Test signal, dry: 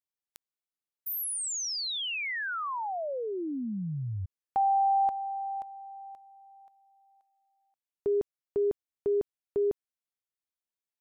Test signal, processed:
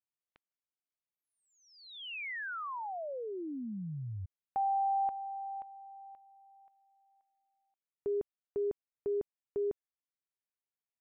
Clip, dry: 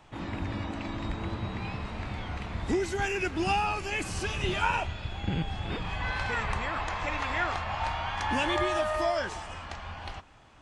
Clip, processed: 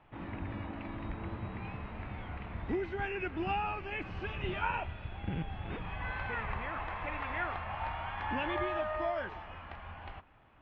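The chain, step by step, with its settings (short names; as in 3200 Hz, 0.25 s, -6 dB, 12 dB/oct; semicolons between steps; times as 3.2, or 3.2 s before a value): LPF 2800 Hz 24 dB/oct; gain -6 dB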